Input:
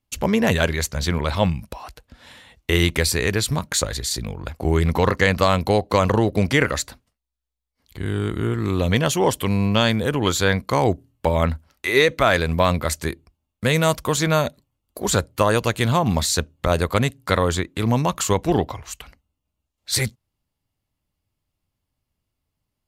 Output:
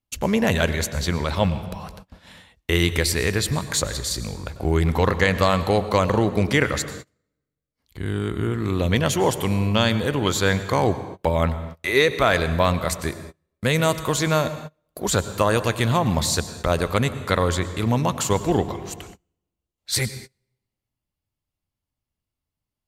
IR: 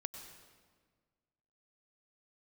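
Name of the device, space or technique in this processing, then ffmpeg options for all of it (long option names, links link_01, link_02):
keyed gated reverb: -filter_complex "[0:a]asplit=3[link_01][link_02][link_03];[1:a]atrim=start_sample=2205[link_04];[link_02][link_04]afir=irnorm=-1:irlink=0[link_05];[link_03]apad=whole_len=1008835[link_06];[link_05][link_06]sidechaingate=range=-31dB:threshold=-46dB:ratio=16:detection=peak,volume=3dB[link_07];[link_01][link_07]amix=inputs=2:normalize=0,volume=-7.5dB"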